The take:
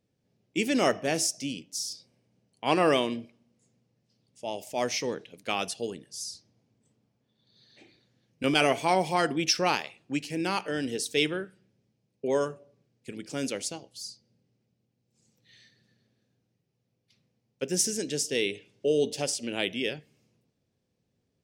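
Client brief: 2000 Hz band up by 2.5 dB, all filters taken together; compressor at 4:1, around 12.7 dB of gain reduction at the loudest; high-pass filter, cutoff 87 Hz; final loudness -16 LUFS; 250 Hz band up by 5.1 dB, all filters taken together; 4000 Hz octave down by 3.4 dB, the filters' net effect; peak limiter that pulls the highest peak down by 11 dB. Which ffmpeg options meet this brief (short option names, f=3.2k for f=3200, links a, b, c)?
-af "highpass=87,equalizer=f=250:t=o:g=6.5,equalizer=f=2k:t=o:g=5.5,equalizer=f=4k:t=o:g=-7.5,acompressor=threshold=-32dB:ratio=4,volume=24dB,alimiter=limit=-5dB:level=0:latency=1"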